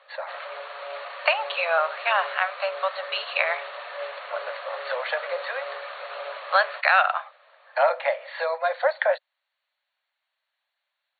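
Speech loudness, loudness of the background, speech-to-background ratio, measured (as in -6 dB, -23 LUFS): -25.5 LUFS, -35.5 LUFS, 10.0 dB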